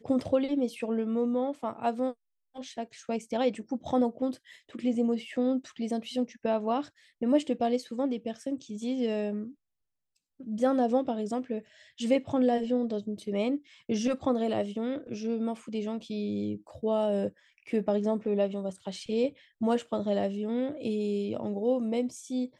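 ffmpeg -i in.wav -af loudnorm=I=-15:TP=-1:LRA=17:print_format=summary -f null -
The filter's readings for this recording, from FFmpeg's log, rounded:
Input Integrated:    -30.6 LUFS
Input True Peak:     -12.9 dBTP
Input LRA:             2.4 LU
Input Threshold:     -40.8 LUFS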